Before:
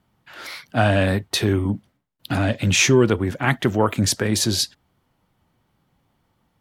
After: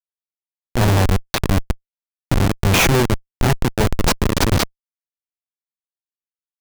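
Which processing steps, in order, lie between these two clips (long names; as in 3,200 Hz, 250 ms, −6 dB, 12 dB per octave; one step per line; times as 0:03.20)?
harmonic generator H 3 −33 dB, 5 −25 dB, 6 −25 dB, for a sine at −3.5 dBFS
comparator with hysteresis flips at −15 dBFS
level +7.5 dB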